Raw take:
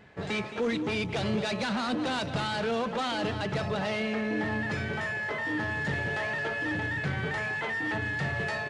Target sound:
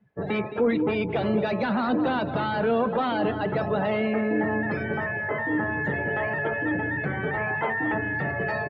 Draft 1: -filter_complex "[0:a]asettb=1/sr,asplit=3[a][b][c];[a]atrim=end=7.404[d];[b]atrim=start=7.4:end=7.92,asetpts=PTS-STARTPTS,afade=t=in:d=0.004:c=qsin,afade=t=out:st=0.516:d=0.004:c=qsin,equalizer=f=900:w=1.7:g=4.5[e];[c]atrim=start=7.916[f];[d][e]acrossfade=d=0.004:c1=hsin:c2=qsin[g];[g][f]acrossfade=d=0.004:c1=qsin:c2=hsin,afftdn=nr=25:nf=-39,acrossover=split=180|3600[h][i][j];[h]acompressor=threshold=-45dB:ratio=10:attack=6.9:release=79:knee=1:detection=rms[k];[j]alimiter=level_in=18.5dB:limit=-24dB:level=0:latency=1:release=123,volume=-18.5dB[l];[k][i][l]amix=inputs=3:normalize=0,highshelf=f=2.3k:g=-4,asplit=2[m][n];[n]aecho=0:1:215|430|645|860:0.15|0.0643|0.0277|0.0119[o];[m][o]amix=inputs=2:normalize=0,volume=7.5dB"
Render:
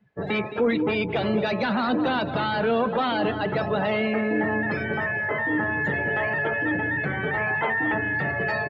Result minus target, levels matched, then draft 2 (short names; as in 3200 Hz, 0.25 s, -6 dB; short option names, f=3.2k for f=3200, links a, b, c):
4000 Hz band +4.5 dB
-filter_complex "[0:a]asettb=1/sr,asplit=3[a][b][c];[a]atrim=end=7.404[d];[b]atrim=start=7.4:end=7.92,asetpts=PTS-STARTPTS,afade=t=in:d=0.004:c=qsin,afade=t=out:st=0.516:d=0.004:c=qsin,equalizer=f=900:w=1.7:g=4.5[e];[c]atrim=start=7.916[f];[d][e]acrossfade=d=0.004:c1=hsin:c2=qsin[g];[g][f]acrossfade=d=0.004:c1=qsin:c2=hsin,afftdn=nr=25:nf=-39,acrossover=split=180|3600[h][i][j];[h]acompressor=threshold=-45dB:ratio=10:attack=6.9:release=79:knee=1:detection=rms[k];[j]alimiter=level_in=18.5dB:limit=-24dB:level=0:latency=1:release=123,volume=-18.5dB[l];[k][i][l]amix=inputs=3:normalize=0,highshelf=f=2.3k:g=-13,asplit=2[m][n];[n]aecho=0:1:215|430|645|860:0.15|0.0643|0.0277|0.0119[o];[m][o]amix=inputs=2:normalize=0,volume=7.5dB"